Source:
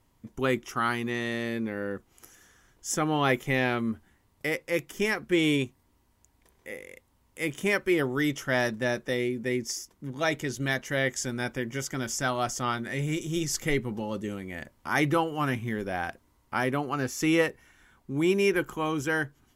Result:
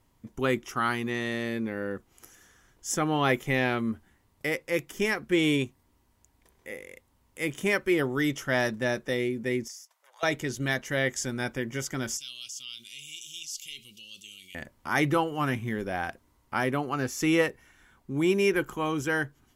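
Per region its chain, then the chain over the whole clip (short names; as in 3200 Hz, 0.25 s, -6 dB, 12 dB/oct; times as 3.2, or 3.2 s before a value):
9.68–10.23 steep high-pass 610 Hz 48 dB/oct + compressor 1.5:1, threshold -58 dBFS
12.17–14.55 elliptic high-pass 2800 Hz + high shelf 3900 Hz -10 dB + fast leveller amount 50%
whole clip: dry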